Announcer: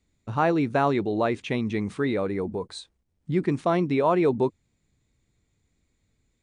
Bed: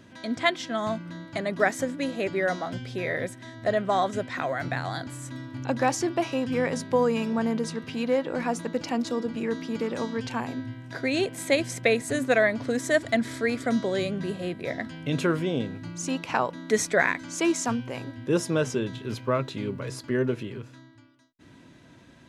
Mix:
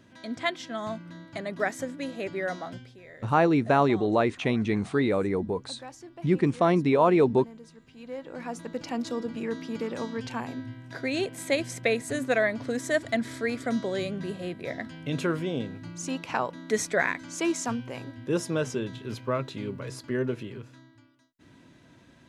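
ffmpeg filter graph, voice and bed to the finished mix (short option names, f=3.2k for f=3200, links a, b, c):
-filter_complex "[0:a]adelay=2950,volume=1dB[a];[1:a]volume=11.5dB,afade=t=out:st=2.68:d=0.29:silence=0.188365,afade=t=in:st=7.94:d=1.13:silence=0.149624[b];[a][b]amix=inputs=2:normalize=0"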